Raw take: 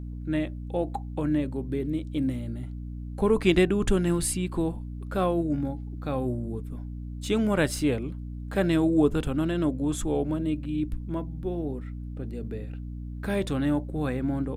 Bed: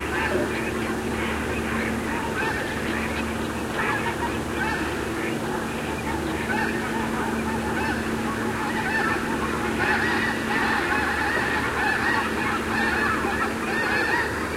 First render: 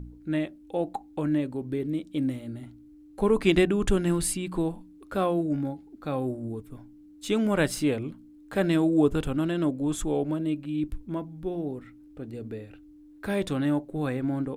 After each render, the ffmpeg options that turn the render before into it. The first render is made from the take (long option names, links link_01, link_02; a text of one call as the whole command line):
ffmpeg -i in.wav -af "bandreject=frequency=60:width_type=h:width=4,bandreject=frequency=120:width_type=h:width=4,bandreject=frequency=180:width_type=h:width=4,bandreject=frequency=240:width_type=h:width=4" out.wav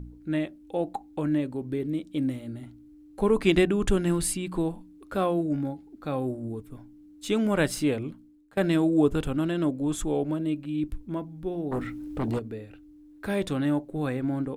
ffmpeg -i in.wav -filter_complex "[0:a]asplit=3[link_01][link_02][link_03];[link_01]afade=type=out:start_time=11.71:duration=0.02[link_04];[link_02]aeval=exprs='0.0631*sin(PI/2*3.16*val(0)/0.0631)':channel_layout=same,afade=type=in:start_time=11.71:duration=0.02,afade=type=out:start_time=12.38:duration=0.02[link_05];[link_03]afade=type=in:start_time=12.38:duration=0.02[link_06];[link_04][link_05][link_06]amix=inputs=3:normalize=0,asplit=2[link_07][link_08];[link_07]atrim=end=8.57,asetpts=PTS-STARTPTS,afade=type=out:start_time=8.09:duration=0.48:silence=0.0707946[link_09];[link_08]atrim=start=8.57,asetpts=PTS-STARTPTS,afade=type=in:duration=0.004:curve=hsin:silence=0.0707946[link_10];[link_09][link_10]concat=n=2:v=0:a=1" out.wav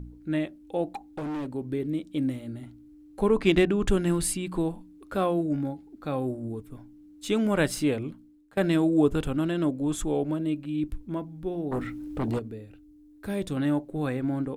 ffmpeg -i in.wav -filter_complex "[0:a]asettb=1/sr,asplit=3[link_01][link_02][link_03];[link_01]atrim=end=0.904[link_04];[link_02]atrim=start=0.9:end=1.47,asetpts=PTS-STARTPTS,afade=type=in:duration=0.004:curve=qsin,afade=type=out:start_time=0.566:duration=0.004:curve=qsin,volume=30dB,asoftclip=hard,volume=-30dB[link_05];[link_03]atrim=start=1.466[link_06];[link_04][link_05]acrossfade=duration=0.004:curve1=hsin:curve2=qsin[link_07];[link_07][link_06]acrossfade=duration=0.004:curve1=qsin:curve2=hsin,asettb=1/sr,asplit=3[link_08][link_09][link_10];[link_08]atrim=end=3.284[link_11];[link_09]atrim=start=3.28:end=3.89,asetpts=PTS-STARTPTS,afade=type=in:duration=0.004:curve=qsin,afade=type=out:start_time=0.606:duration=0.004:curve=qsin,adynamicsmooth=sensitivity=7.5:basefreq=5800[link_12];[link_10]atrim=start=3.886[link_13];[link_11][link_12]acrossfade=duration=0.004:curve1=hsin:curve2=qsin[link_14];[link_14][link_13]acrossfade=duration=0.004:curve1=qsin:curve2=hsin,asettb=1/sr,asplit=3[link_15][link_16][link_17];[link_15]atrim=end=12.504[link_18];[link_16]atrim=start=12.5:end=13.57,asetpts=PTS-STARTPTS,afade=type=in:duration=0.004:curve=qsin,afade=type=out:start_time=1.066:duration=0.004:curve=qsin,equalizer=frequency=1400:width=0.33:gain=-7[link_19];[link_17]atrim=start=13.566[link_20];[link_18][link_19]acrossfade=duration=0.004:curve1=hsin:curve2=qsin[link_21];[link_21][link_20]acrossfade=duration=0.004:curve1=qsin:curve2=hsin" out.wav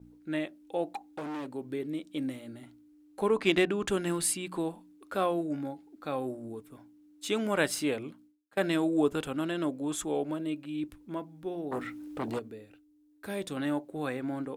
ffmpeg -i in.wav -af "highpass=frequency=480:poles=1,agate=range=-33dB:threshold=-55dB:ratio=3:detection=peak" out.wav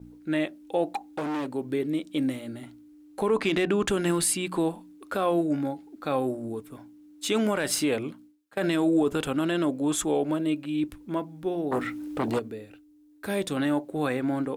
ffmpeg -i in.wav -af "acontrast=83,alimiter=limit=-15.5dB:level=0:latency=1:release=22" out.wav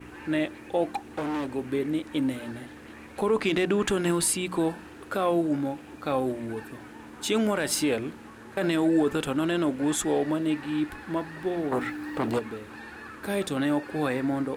ffmpeg -i in.wav -i bed.wav -filter_complex "[1:a]volume=-20dB[link_01];[0:a][link_01]amix=inputs=2:normalize=0" out.wav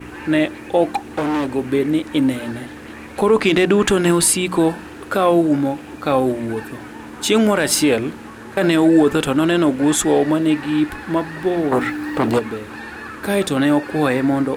ffmpeg -i in.wav -af "volume=10dB" out.wav